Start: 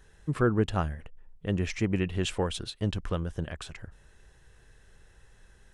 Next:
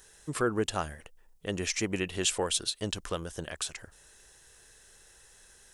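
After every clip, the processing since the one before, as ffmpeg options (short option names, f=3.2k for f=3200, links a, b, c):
-filter_complex "[0:a]bass=f=250:g=-11,treble=f=4k:g=14,asplit=2[a][b];[b]alimiter=limit=-20.5dB:level=0:latency=1:release=86,volume=-1dB[c];[a][c]amix=inputs=2:normalize=0,volume=-4.5dB"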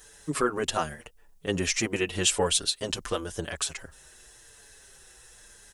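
-filter_complex "[0:a]asplit=2[a][b];[b]adelay=6.4,afreqshift=-0.91[c];[a][c]amix=inputs=2:normalize=1,volume=7.5dB"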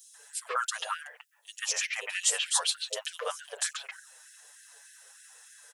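-filter_complex "[0:a]acrossover=split=480|3600[a][b][c];[a]adelay=90[d];[b]adelay=140[e];[d][e][c]amix=inputs=3:normalize=0,afftfilt=real='re*gte(b*sr/1024,400*pow(1500/400,0.5+0.5*sin(2*PI*3.3*pts/sr)))':imag='im*gte(b*sr/1024,400*pow(1500/400,0.5+0.5*sin(2*PI*3.3*pts/sr)))':win_size=1024:overlap=0.75"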